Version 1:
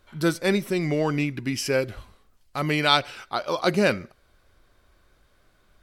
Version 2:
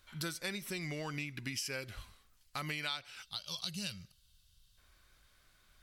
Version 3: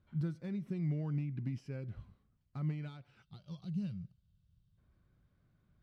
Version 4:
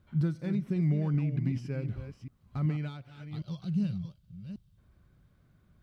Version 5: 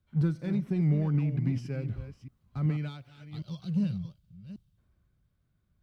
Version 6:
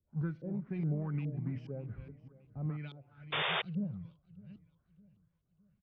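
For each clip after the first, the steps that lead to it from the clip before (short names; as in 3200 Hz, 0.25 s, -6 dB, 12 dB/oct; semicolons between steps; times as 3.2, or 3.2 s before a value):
spectral gain 3.22–4.78, 210–2600 Hz -16 dB; passive tone stack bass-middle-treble 5-5-5; compressor 6:1, threshold -44 dBFS, peak gain reduction 19 dB; gain +7.5 dB
overloaded stage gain 32.5 dB; band-pass 150 Hz, Q 1.6; gain +9.5 dB
reverse delay 0.38 s, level -9.5 dB; gain +7.5 dB
in parallel at -12 dB: overloaded stage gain 31.5 dB; on the sum: three-band expander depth 40%
LFO low-pass saw up 2.4 Hz 420–3400 Hz; feedback echo 0.61 s, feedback 45%, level -20.5 dB; painted sound noise, 3.32–3.62, 370–3700 Hz -24 dBFS; gain -9 dB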